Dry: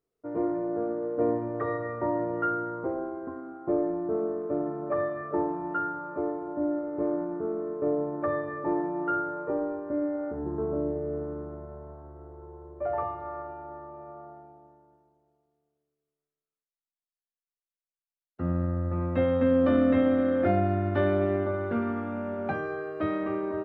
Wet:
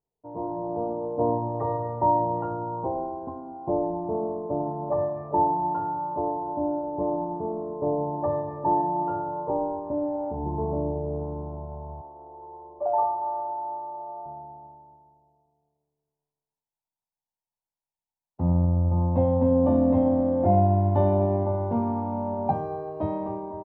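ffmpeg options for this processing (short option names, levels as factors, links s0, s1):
-filter_complex "[0:a]asettb=1/sr,asplit=3[s0][s1][s2];[s0]atrim=end=12.014[s3];[s1]atrim=start=12.01:end=14.26,asetpts=PTS-STARTPTS,afade=t=in:d=0.004:c=qsin,afade=t=out:st=2.246:d=0.004:c=qsin,acrossover=split=270 2100:gain=0.0794 1 0.2[s4][s5][s6];[s4][s5][s6]amix=inputs=3:normalize=0[s7];[s2]atrim=start=14.256[s8];[s3][s7]acrossfade=d=0.004:c1=hsin:c2=qsin[s9];[s9][s8]acrossfade=d=0.004:c1=qsin:c2=hsin,asettb=1/sr,asplit=3[s10][s11][s12];[s10]atrim=end=18.654[s13];[s11]atrim=start=18.65:end=20.52,asetpts=PTS-STARTPTS,afade=t=in:d=0.004:c=qsin,afade=t=out:st=1.866:d=0.004:c=qsin,highshelf=f=2300:g=-10[s14];[s12]atrim=start=20.516[s15];[s13][s14]acrossfade=d=0.004:c1=hsin:c2=qsin[s16];[s16][s15]acrossfade=d=0.004:c1=qsin:c2=hsin,firequalizer=gain_entry='entry(150,0);entry(330,-10);entry(650,-3);entry(930,7);entry(1300,-25);entry(5200,-13)':delay=0.05:min_phase=1,dynaudnorm=f=120:g=9:m=2.37"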